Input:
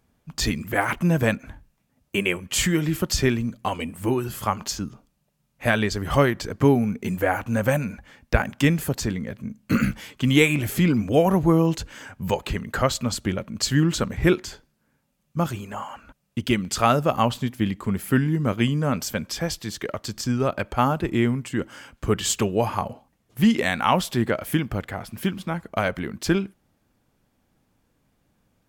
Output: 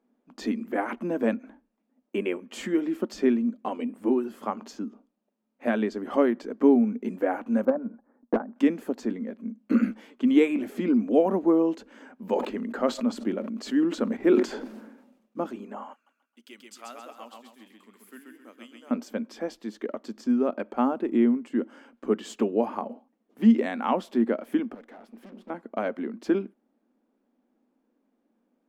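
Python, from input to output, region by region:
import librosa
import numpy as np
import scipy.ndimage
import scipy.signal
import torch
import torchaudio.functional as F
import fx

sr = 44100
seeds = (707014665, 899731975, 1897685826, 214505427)

y = fx.chain(x, sr, fx.cheby2_lowpass(hz=3500.0, order=4, stop_db=50),
    fx.transient(attack_db=10, sustain_db=-6),
    fx.clip_hard(threshold_db=-11.0), at=(7.65, 8.56))
y = fx.chain(y, sr, fx.block_float(bits=7),
    fx.sustainer(db_per_s=51.0), at=(12.19, 15.43))
y = fx.chain(y, sr, fx.differentiator(),
    fx.echo_feedback(ms=133, feedback_pct=37, wet_db=-3.0), at=(15.93, 18.91))
y = fx.chain(y, sr, fx.highpass(hz=100.0, slope=6),
    fx.tube_stage(drive_db=37.0, bias=0.75), at=(24.74, 25.5))
y = scipy.signal.sosfilt(scipy.signal.ellip(4, 1.0, 40, 230.0, 'highpass', fs=sr, output='sos'), y)
y = fx.tilt_eq(y, sr, slope=-4.5)
y = y * 10.0 ** (-6.5 / 20.0)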